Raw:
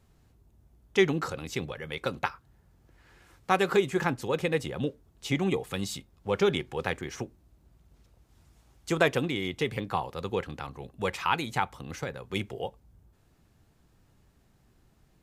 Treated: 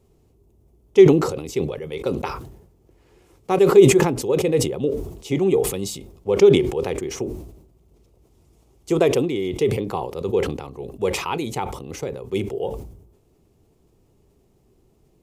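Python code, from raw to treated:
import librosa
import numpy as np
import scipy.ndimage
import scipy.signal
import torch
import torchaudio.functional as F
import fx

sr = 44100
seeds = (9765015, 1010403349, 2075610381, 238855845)

y = fx.graphic_eq_15(x, sr, hz=(400, 1600, 4000), db=(11, -12, -4))
y = fx.sustainer(y, sr, db_per_s=68.0)
y = F.gain(torch.from_numpy(y), 2.0).numpy()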